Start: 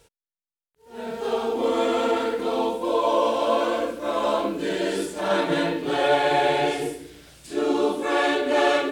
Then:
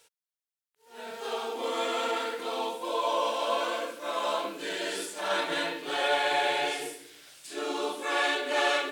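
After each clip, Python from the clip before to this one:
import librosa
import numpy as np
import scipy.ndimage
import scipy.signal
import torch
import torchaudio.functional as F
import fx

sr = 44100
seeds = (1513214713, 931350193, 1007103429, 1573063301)

y = fx.highpass(x, sr, hz=1400.0, slope=6)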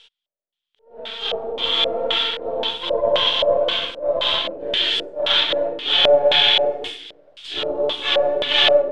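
y = np.where(x < 0.0, 10.0 ** (-12.0 / 20.0) * x, x)
y = fx.high_shelf(y, sr, hz=2500.0, db=9.0)
y = fx.filter_lfo_lowpass(y, sr, shape='square', hz=1.9, low_hz=580.0, high_hz=3300.0, q=7.5)
y = y * librosa.db_to_amplitude(4.0)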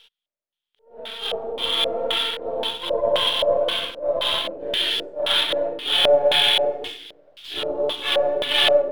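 y = scipy.ndimage.median_filter(x, 5, mode='constant')
y = y * librosa.db_to_amplitude(-2.0)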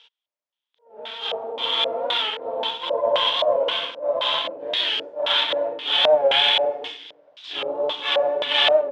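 y = fx.cabinet(x, sr, low_hz=180.0, low_slope=12, high_hz=6300.0, hz=(190.0, 370.0, 950.0, 4300.0), db=(-8, -8, 6, -3))
y = fx.record_warp(y, sr, rpm=45.0, depth_cents=100.0)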